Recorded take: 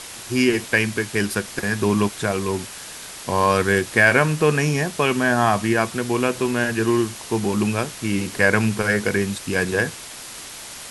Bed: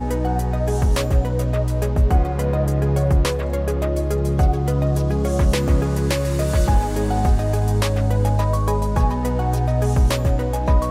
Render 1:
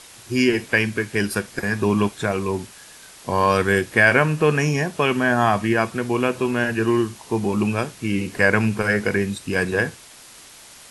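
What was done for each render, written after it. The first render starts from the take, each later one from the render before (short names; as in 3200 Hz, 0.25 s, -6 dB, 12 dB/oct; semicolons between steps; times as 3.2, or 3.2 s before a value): noise print and reduce 8 dB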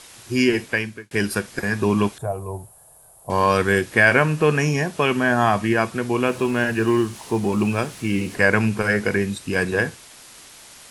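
0.57–1.11 fade out; 2.18–3.3 EQ curve 140 Hz 0 dB, 220 Hz -18 dB, 460 Hz -7 dB, 690 Hz +2 dB, 2000 Hz -25 dB, 5700 Hz -22 dB, 9900 Hz 0 dB; 6.27–8.35 G.711 law mismatch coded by mu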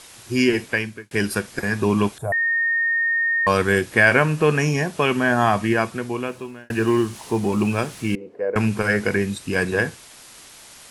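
2.32–3.47 bleep 1840 Hz -17.5 dBFS; 5.73–6.7 fade out; 8.15–8.56 band-pass 480 Hz, Q 4.2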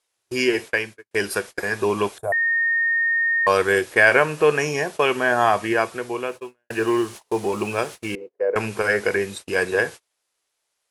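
gate -32 dBFS, range -32 dB; resonant low shelf 310 Hz -9 dB, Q 1.5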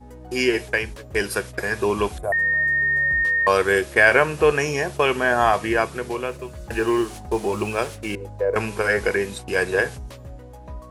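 add bed -20 dB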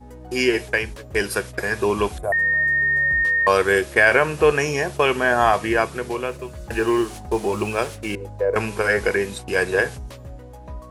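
gain +1 dB; limiter -3 dBFS, peak gain reduction 2.5 dB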